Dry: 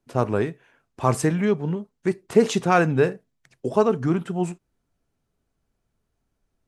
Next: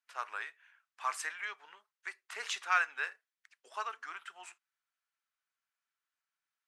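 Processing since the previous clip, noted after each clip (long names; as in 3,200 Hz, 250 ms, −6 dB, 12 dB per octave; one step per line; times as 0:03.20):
high-pass filter 1,400 Hz 24 dB per octave
spectral tilt −3.5 dB per octave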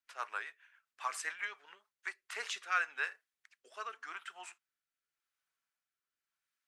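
rotating-speaker cabinet horn 7.5 Hz, later 0.9 Hz, at 0:01.60
level +2 dB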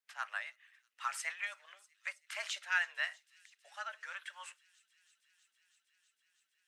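delay with a high-pass on its return 322 ms, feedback 84%, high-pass 3,800 Hz, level −20.5 dB
frequency shifter +190 Hz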